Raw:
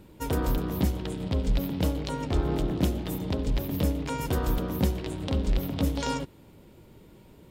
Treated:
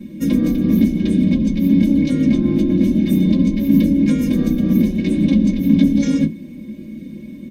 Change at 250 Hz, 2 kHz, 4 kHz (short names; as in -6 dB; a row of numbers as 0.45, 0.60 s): +18.0 dB, +6.5 dB, n/a